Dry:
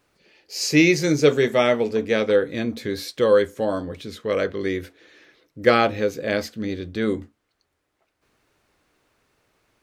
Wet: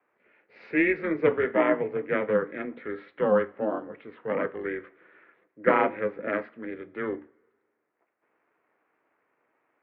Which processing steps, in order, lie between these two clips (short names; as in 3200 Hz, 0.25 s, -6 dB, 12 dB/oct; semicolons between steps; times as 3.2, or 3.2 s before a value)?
ring modulator 160 Hz; two-slope reverb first 0.44 s, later 1.7 s, from -18 dB, DRR 16 dB; mistuned SSB -150 Hz 460–2400 Hz